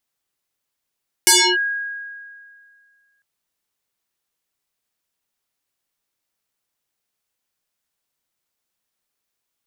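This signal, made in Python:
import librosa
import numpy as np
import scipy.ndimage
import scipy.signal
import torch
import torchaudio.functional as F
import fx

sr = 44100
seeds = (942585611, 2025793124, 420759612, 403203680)

y = fx.fm2(sr, length_s=1.95, level_db=-8.0, carrier_hz=1640.0, ratio=0.78, index=8.2, index_s=0.3, decay_s=2.07, shape='linear')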